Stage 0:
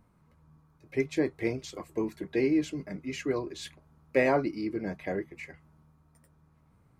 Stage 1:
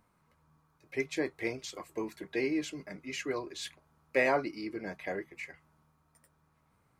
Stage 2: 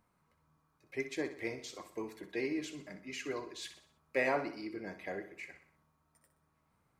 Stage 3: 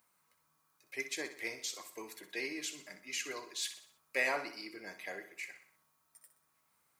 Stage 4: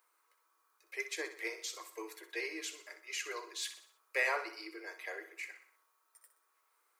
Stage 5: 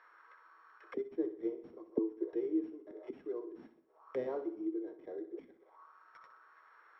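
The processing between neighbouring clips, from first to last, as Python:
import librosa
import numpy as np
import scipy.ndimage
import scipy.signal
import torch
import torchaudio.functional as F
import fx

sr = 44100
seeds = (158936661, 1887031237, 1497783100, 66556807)

y1 = fx.low_shelf(x, sr, hz=440.0, db=-12.0)
y1 = y1 * librosa.db_to_amplitude(1.5)
y2 = fx.echo_feedback(y1, sr, ms=62, feedback_pct=48, wet_db=-11)
y2 = y2 * librosa.db_to_amplitude(-4.5)
y3 = fx.tilt_eq(y2, sr, slope=4.0)
y3 = y3 * librosa.db_to_amplitude(-1.5)
y4 = scipy.signal.sosfilt(scipy.signal.cheby1(6, 6, 320.0, 'highpass', fs=sr, output='sos'), y3)
y4 = y4 * librosa.db_to_amplitude(3.5)
y5 = np.r_[np.sort(y4[:len(y4) // 8 * 8].reshape(-1, 8), axis=1).ravel(), y4[len(y4) // 8 * 8:]]
y5 = fx.envelope_lowpass(y5, sr, base_hz=260.0, top_hz=1800.0, q=4.0, full_db=-44.5, direction='down')
y5 = y5 * librosa.db_to_amplitude(11.0)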